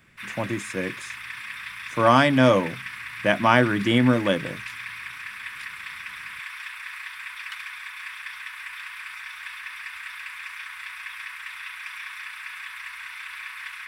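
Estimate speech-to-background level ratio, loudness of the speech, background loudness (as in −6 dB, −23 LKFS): 14.0 dB, −21.0 LKFS, −35.0 LKFS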